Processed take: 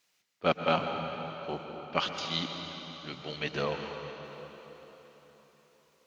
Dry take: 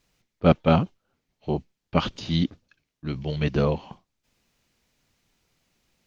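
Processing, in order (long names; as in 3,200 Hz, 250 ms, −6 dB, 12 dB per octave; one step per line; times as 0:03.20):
high-pass filter 1,200 Hz 6 dB per octave
dense smooth reverb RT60 4.3 s, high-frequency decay 0.85×, pre-delay 105 ms, DRR 4.5 dB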